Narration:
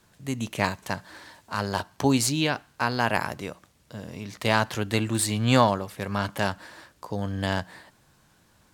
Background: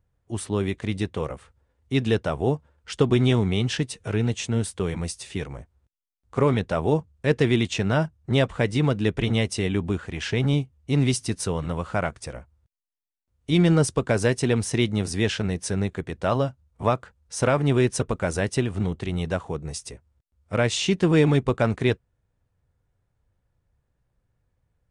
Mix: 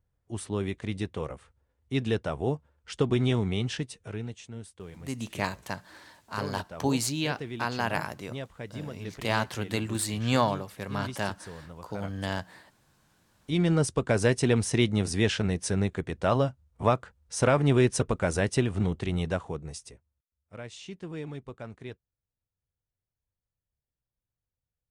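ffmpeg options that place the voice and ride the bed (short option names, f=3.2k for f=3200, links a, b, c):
-filter_complex "[0:a]adelay=4800,volume=-5dB[a];[1:a]volume=10dB,afade=t=out:st=3.6:d=0.82:silence=0.266073,afade=t=in:st=12.93:d=1.41:silence=0.16788,afade=t=out:st=19.13:d=1.11:silence=0.125893[b];[a][b]amix=inputs=2:normalize=0"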